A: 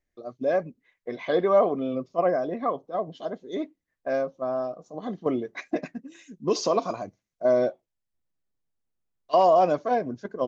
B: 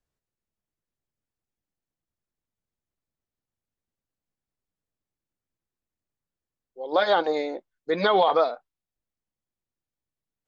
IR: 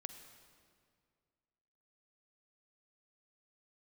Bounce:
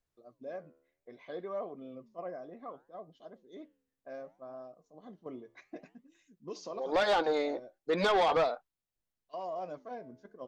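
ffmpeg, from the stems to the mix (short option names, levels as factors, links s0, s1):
-filter_complex "[0:a]flanger=delay=4.4:depth=8.8:regen=-87:speed=0.64:shape=sinusoidal,volume=0.211[s0];[1:a]volume=0.794,asplit=2[s1][s2];[s2]apad=whole_len=461748[s3];[s0][s3]sidechaincompress=threshold=0.0282:ratio=6:attack=41:release=1380[s4];[s4][s1]amix=inputs=2:normalize=0,asoftclip=type=tanh:threshold=0.0794"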